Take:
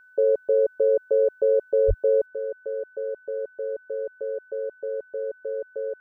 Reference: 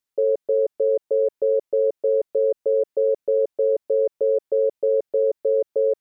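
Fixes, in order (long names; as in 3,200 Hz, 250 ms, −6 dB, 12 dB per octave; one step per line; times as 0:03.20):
notch filter 1,500 Hz, Q 30
0:01.87–0:01.99: high-pass filter 140 Hz 24 dB per octave
level 0 dB, from 0:02.26 +10 dB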